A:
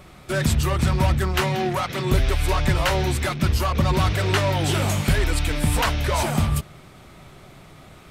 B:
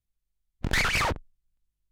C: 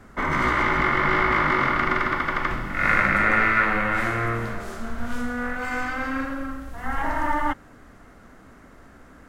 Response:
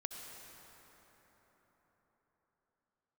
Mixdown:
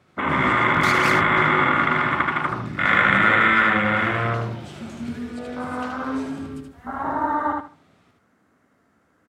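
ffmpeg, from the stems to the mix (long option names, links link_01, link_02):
-filter_complex "[0:a]lowpass=6900,acompressor=threshold=-21dB:ratio=6,volume=-15dB,asplit=2[link_01][link_02];[link_02]volume=-4dB[link_03];[1:a]adelay=100,volume=-1dB[link_04];[2:a]afwtdn=0.0631,volume=1.5dB,asplit=2[link_05][link_06];[link_06]volume=-3dB[link_07];[link_03][link_07]amix=inputs=2:normalize=0,aecho=0:1:76|152|228|304:1|0.23|0.0529|0.0122[link_08];[link_01][link_04][link_05][link_08]amix=inputs=4:normalize=0,highpass=frequency=91:width=0.5412,highpass=frequency=91:width=1.3066"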